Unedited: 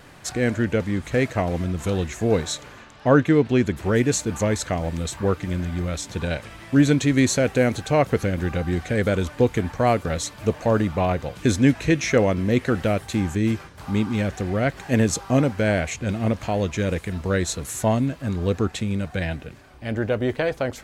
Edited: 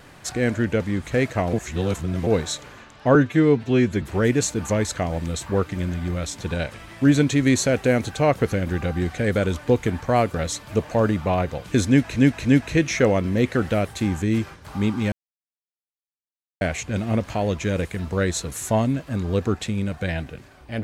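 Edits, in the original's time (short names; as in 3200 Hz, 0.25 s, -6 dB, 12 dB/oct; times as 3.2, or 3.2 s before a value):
1.53–2.27 reverse
3.15–3.73 stretch 1.5×
11.58–11.87 loop, 3 plays
14.25–15.74 mute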